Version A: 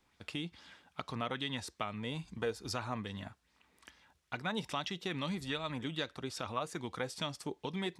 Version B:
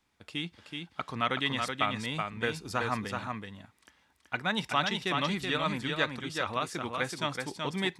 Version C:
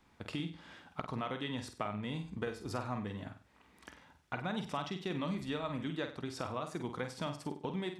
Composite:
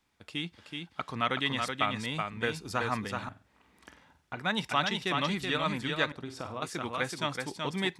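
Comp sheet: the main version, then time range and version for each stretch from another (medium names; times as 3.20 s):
B
3.29–4.37 s: from C
6.12–6.62 s: from C
not used: A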